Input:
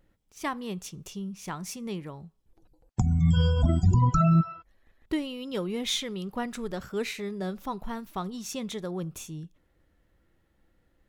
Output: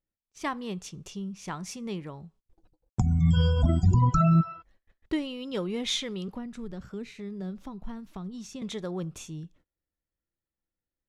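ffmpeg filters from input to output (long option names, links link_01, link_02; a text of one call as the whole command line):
ffmpeg -i in.wav -filter_complex "[0:a]agate=range=-25dB:threshold=-58dB:ratio=16:detection=peak,lowpass=8000,asettb=1/sr,asplit=3[link_01][link_02][link_03];[link_01]atrim=end=6.284[link_04];[link_02]atrim=start=6.28:end=8.62,asetpts=PTS-STARTPTS,afade=type=in:duration=0.004:curve=qsin,afade=type=out:start_time=2.336:duration=0.004:curve=qsin,acrossover=split=280[link_05][link_06];[link_06]acompressor=threshold=-44dB:ratio=10[link_07];[link_05][link_07]amix=inputs=2:normalize=0[link_08];[link_03]atrim=start=8.616[link_09];[link_04][link_08]acrossfade=duration=0.004:curve1=hsin:curve2=qsin[link_10];[link_10][link_09]acrossfade=duration=0.004:curve1=qsin:curve2=hsin" out.wav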